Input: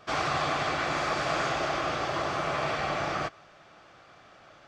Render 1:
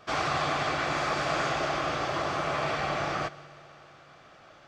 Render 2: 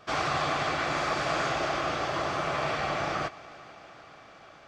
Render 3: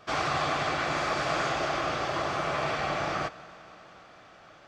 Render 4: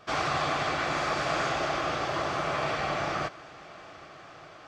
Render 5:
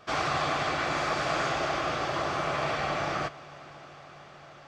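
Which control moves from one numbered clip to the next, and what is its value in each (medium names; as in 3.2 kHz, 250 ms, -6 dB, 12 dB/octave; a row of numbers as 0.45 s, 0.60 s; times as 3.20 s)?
multi-head delay, time: 62 ms, 148 ms, 94 ms, 403 ms, 227 ms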